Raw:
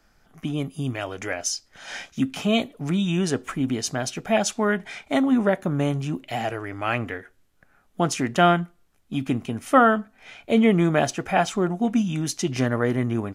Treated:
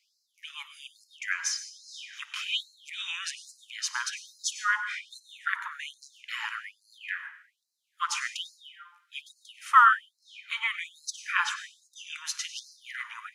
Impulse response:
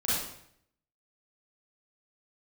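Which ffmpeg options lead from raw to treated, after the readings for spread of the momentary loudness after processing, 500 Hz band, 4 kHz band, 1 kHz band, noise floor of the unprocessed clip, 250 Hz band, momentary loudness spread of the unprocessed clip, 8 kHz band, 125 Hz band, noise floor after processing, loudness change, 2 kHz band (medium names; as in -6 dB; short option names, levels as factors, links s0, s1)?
17 LU, under -40 dB, -1.5 dB, -3.0 dB, -62 dBFS, under -40 dB, 12 LU, -3.5 dB, under -40 dB, -76 dBFS, -5.5 dB, 0.0 dB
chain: -filter_complex "[0:a]aemphasis=mode=reproduction:type=50kf,asplit=2[s0][s1];[1:a]atrim=start_sample=2205,adelay=55[s2];[s1][s2]afir=irnorm=-1:irlink=0,volume=0.112[s3];[s0][s3]amix=inputs=2:normalize=0,afftfilt=real='re*gte(b*sr/1024,850*pow(4000/850,0.5+0.5*sin(2*PI*1.2*pts/sr)))':imag='im*gte(b*sr/1024,850*pow(4000/850,0.5+0.5*sin(2*PI*1.2*pts/sr)))':win_size=1024:overlap=0.75,volume=1.41"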